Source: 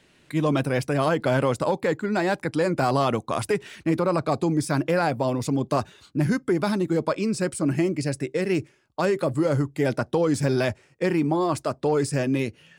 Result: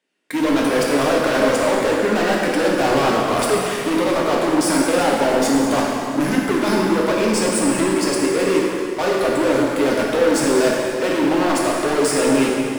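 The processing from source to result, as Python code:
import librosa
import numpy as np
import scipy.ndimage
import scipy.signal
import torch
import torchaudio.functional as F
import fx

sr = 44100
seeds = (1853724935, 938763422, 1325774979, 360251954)

y = scipy.signal.sosfilt(scipy.signal.butter(4, 230.0, 'highpass', fs=sr, output='sos'), x)
y = fx.notch(y, sr, hz=4000.0, q=14.0)
y = fx.leveller(y, sr, passes=5)
y = fx.rev_plate(y, sr, seeds[0], rt60_s=2.7, hf_ratio=0.8, predelay_ms=0, drr_db=-3.5)
y = y * 10.0 ** (-7.5 / 20.0)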